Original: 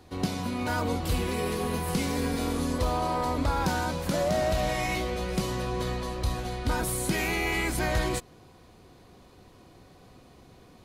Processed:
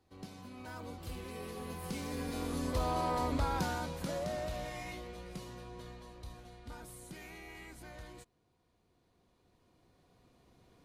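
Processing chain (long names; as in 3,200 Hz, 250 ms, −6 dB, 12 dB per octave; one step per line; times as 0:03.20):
camcorder AGC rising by 6.5 dB per second
source passing by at 0:03.13, 8 m/s, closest 4.9 metres
level −5 dB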